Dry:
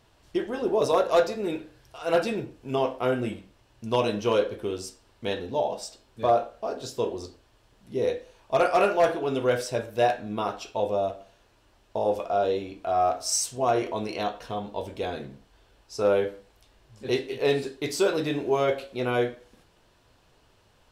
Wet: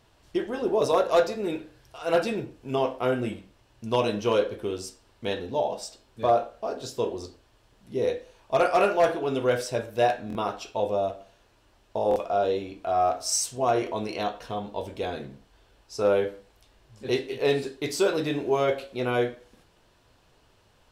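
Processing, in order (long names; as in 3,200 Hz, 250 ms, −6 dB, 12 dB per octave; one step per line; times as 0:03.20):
buffer that repeats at 0:10.28/0:12.09, samples 1,024, times 2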